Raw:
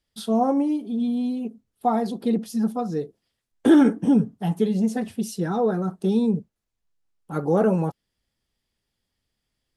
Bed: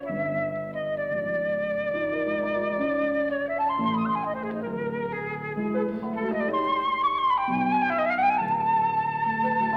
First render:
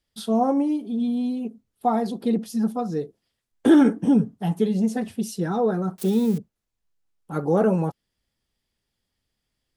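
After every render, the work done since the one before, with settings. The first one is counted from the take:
0:05.98–0:06.38: spike at every zero crossing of −27 dBFS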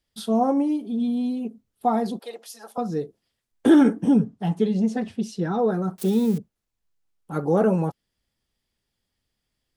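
0:02.19–0:02.78: high-pass filter 580 Hz 24 dB per octave
0:04.18–0:05.57: low-pass filter 8,000 Hz → 4,900 Hz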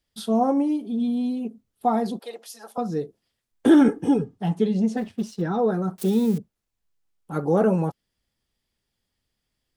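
0:03.88–0:04.38: comb filter 2.4 ms, depth 70%
0:04.97–0:05.42: mu-law and A-law mismatch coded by A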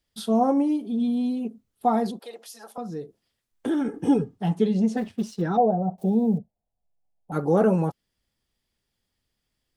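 0:02.11–0:03.94: downward compressor 1.5 to 1, threshold −41 dBFS
0:05.57–0:07.32: drawn EQ curve 220 Hz 0 dB, 350 Hz −8 dB, 720 Hz +10 dB, 1,300 Hz −21 dB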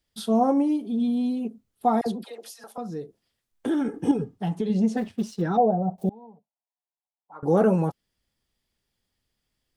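0:02.01–0:02.64: all-pass dispersion lows, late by 54 ms, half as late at 930 Hz
0:04.11–0:04.70: downward compressor 5 to 1, threshold −22 dBFS
0:06.09–0:07.43: resonant band-pass 990 Hz, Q 6.5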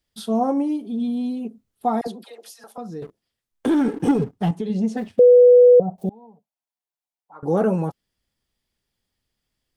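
0:02.07–0:02.48: high-pass filter 380 Hz 6 dB per octave
0:03.02–0:04.51: leveller curve on the samples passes 2
0:05.19–0:05.80: beep over 492 Hz −7 dBFS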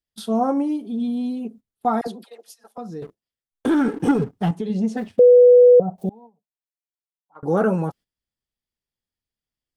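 noise gate −42 dBFS, range −13 dB
dynamic equaliser 1,400 Hz, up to +8 dB, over −42 dBFS, Q 2.6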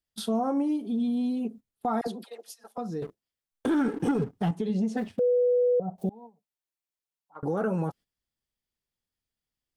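downward compressor 2 to 1, threshold −27 dBFS, peak gain reduction 9.5 dB
brickwall limiter −19.5 dBFS, peak gain reduction 7 dB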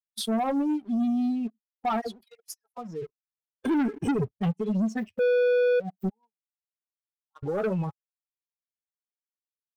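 spectral dynamics exaggerated over time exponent 2
leveller curve on the samples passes 2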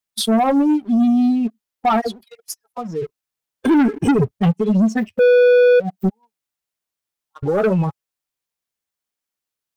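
level +10.5 dB

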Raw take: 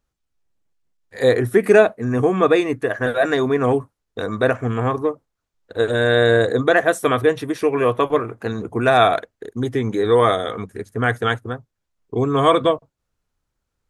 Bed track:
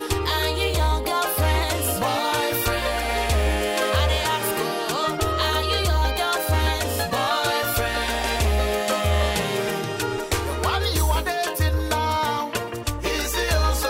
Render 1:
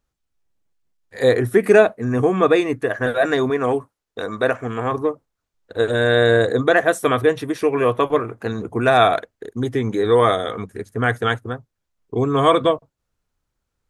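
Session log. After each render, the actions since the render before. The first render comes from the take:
0:03.50–0:04.92: low-shelf EQ 190 Hz −10.5 dB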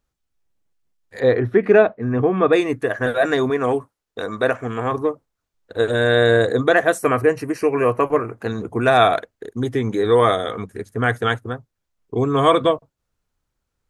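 0:01.20–0:02.53: high-frequency loss of the air 260 metres
0:06.98–0:08.35: Butterworth band-reject 3,500 Hz, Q 2.8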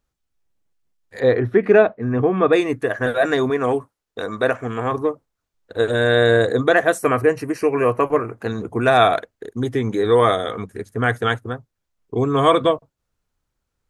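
no processing that can be heard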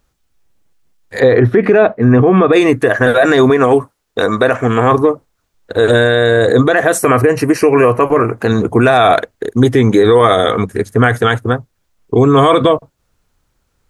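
boost into a limiter +13.5 dB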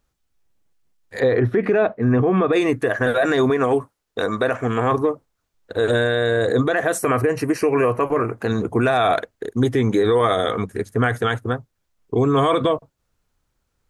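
level −8.5 dB

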